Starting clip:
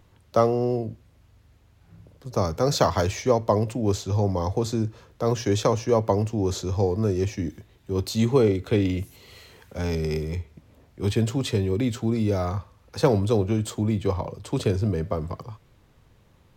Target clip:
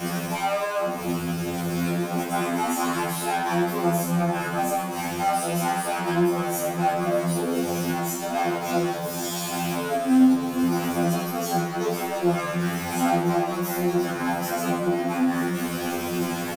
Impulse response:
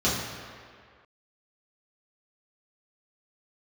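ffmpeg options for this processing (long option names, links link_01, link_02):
-filter_complex "[0:a]aeval=exprs='val(0)+0.5*0.0531*sgn(val(0))':channel_layout=same,highshelf=frequency=8200:gain=10.5,aecho=1:1:79|158|237:0.422|0.0759|0.0137,asetrate=74167,aresample=44100,atempo=0.594604,acompressor=mode=upward:threshold=-22dB:ratio=2.5,asoftclip=type=tanh:threshold=-28.5dB[link_01];[1:a]atrim=start_sample=2205,asetrate=88200,aresample=44100[link_02];[link_01][link_02]afir=irnorm=-1:irlink=0,afftfilt=real='re*2*eq(mod(b,4),0)':imag='im*2*eq(mod(b,4),0)':win_size=2048:overlap=0.75,volume=-4dB"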